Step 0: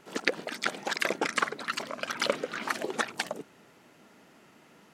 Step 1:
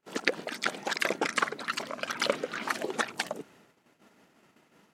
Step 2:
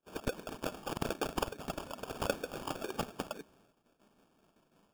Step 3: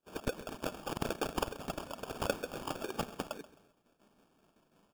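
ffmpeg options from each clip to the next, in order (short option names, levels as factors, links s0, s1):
-af "agate=range=0.0562:threshold=0.00158:ratio=16:detection=peak"
-af "acrusher=samples=22:mix=1:aa=0.000001,volume=0.473"
-af "aecho=1:1:132|264|396:0.133|0.04|0.012"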